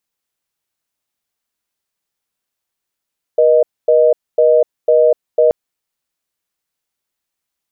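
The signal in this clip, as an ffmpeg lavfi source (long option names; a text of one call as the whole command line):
ffmpeg -f lavfi -i "aevalsrc='0.316*(sin(2*PI*480*t)+sin(2*PI*620*t))*clip(min(mod(t,0.5),0.25-mod(t,0.5))/0.005,0,1)':duration=2.13:sample_rate=44100" out.wav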